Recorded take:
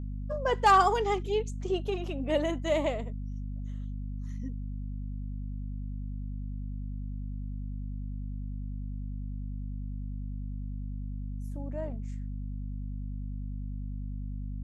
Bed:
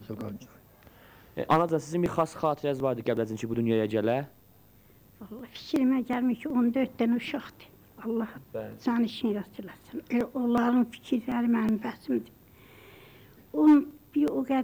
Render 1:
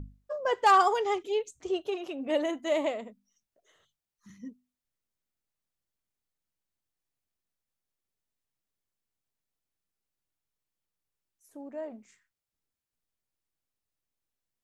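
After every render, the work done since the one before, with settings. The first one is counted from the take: hum notches 50/100/150/200/250 Hz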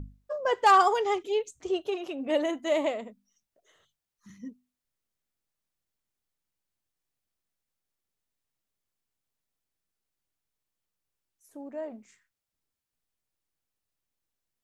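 trim +1.5 dB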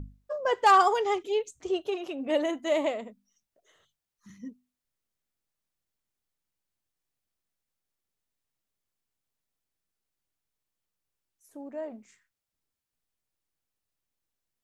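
no audible change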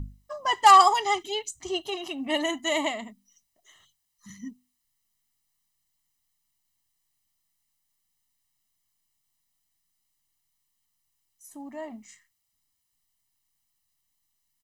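treble shelf 2.8 kHz +10 dB; comb 1 ms, depth 85%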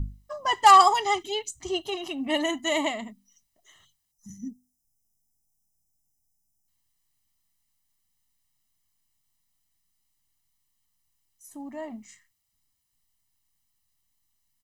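4.12–6.68 s: time-frequency box 890–5000 Hz -19 dB; bass shelf 200 Hz +6 dB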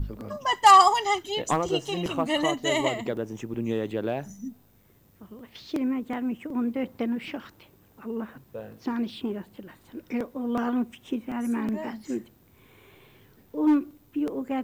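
add bed -2.5 dB

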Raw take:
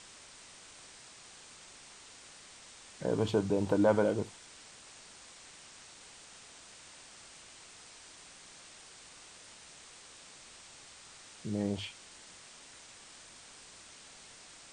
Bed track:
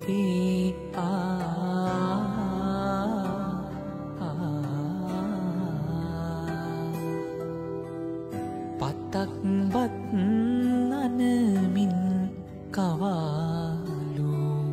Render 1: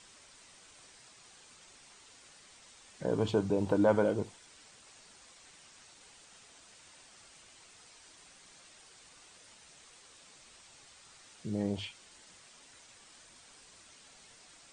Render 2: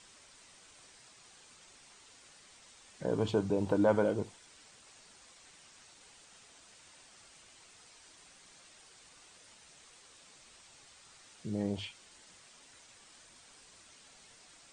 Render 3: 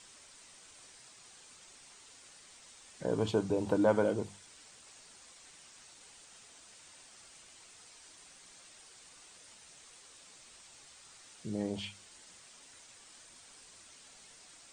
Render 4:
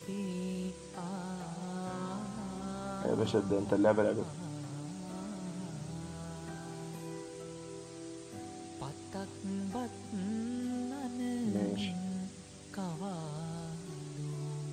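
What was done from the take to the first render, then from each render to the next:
noise reduction 6 dB, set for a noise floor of -54 dBFS
trim -1 dB
treble shelf 7.7 kHz +7 dB; hum notches 50/100/150/200 Hz
add bed track -12.5 dB

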